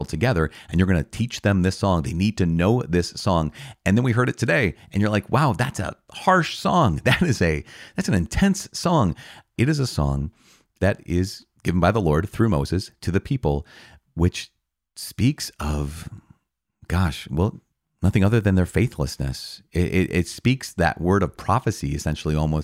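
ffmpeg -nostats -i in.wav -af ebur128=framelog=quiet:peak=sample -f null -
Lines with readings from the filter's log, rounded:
Integrated loudness:
  I:         -22.4 LUFS
  Threshold: -32.8 LUFS
Loudness range:
  LRA:         5.1 LU
  Threshold: -42.9 LUFS
  LRA low:   -26.2 LUFS
  LRA high:  -21.1 LUFS
Sample peak:
  Peak:       -4.5 dBFS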